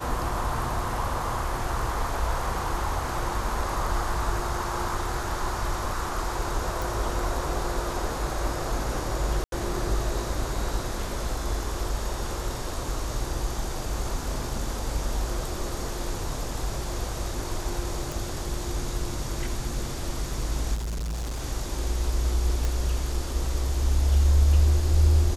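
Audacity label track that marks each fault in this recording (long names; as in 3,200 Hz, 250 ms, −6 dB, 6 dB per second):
6.820000	6.820000	click
9.440000	9.520000	drop-out 82 ms
18.120000	18.120000	click
20.740000	21.410000	clipping −27.5 dBFS
22.650000	22.650000	click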